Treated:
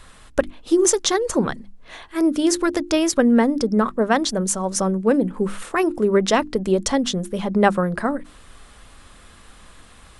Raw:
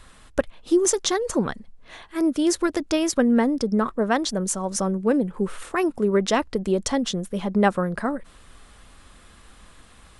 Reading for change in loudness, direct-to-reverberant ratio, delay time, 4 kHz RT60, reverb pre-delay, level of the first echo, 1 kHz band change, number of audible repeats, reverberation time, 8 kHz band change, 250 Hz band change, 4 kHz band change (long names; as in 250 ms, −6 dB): +3.0 dB, no reverb audible, no echo audible, no reverb audible, no reverb audible, no echo audible, +3.5 dB, no echo audible, no reverb audible, +3.5 dB, +2.5 dB, +3.5 dB